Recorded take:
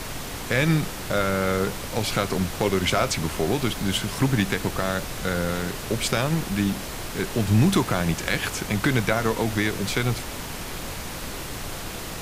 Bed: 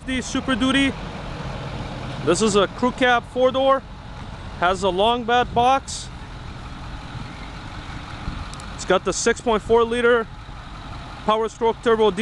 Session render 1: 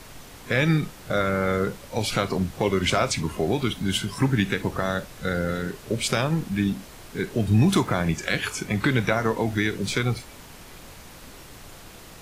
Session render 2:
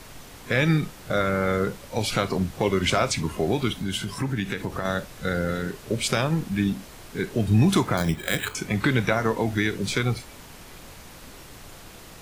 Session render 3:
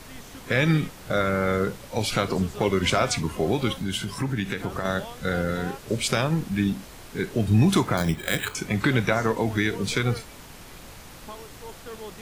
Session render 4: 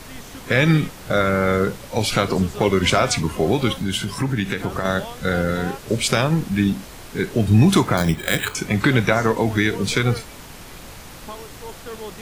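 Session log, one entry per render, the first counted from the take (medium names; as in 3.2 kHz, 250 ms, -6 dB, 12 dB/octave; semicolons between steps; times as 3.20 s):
noise print and reduce 11 dB
3.72–4.85 s: compression 2:1, threshold -26 dBFS; 7.97–8.55 s: careless resampling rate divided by 8×, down filtered, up hold
add bed -22.5 dB
trim +5 dB; peak limiter -3 dBFS, peak gain reduction 1.5 dB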